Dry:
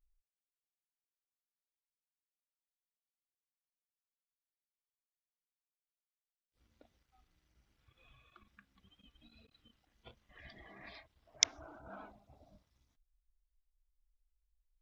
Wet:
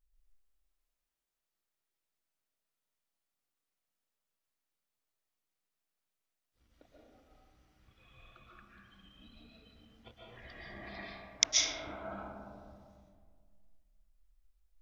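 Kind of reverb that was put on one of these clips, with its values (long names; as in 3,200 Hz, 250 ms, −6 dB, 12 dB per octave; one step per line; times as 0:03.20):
comb and all-pass reverb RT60 1.9 s, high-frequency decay 0.35×, pre-delay 95 ms, DRR −5.5 dB
level +1 dB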